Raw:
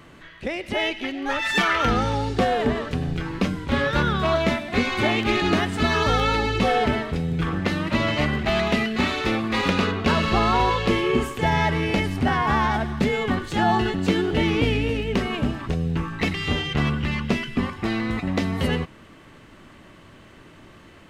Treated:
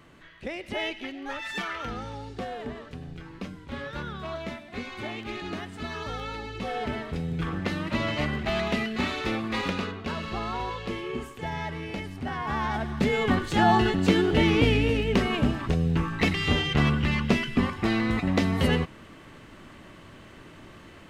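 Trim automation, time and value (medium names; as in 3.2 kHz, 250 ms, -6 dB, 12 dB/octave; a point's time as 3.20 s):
0.91 s -6.5 dB
1.89 s -14 dB
6.53 s -14 dB
7.18 s -5.5 dB
9.55 s -5.5 dB
10.03 s -12 dB
12.22 s -12 dB
13.28 s 0 dB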